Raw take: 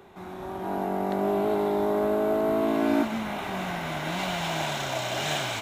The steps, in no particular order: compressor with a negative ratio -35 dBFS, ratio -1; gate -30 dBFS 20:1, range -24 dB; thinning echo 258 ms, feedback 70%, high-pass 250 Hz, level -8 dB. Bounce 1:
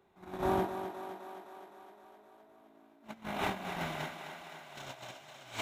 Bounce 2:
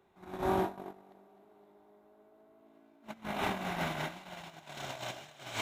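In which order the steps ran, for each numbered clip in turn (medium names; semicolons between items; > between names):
compressor with a negative ratio > gate > thinning echo; compressor with a negative ratio > thinning echo > gate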